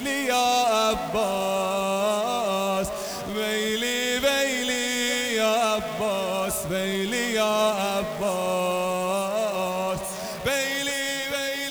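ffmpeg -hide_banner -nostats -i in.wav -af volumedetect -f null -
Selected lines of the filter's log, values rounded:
mean_volume: -25.0 dB
max_volume: -11.6 dB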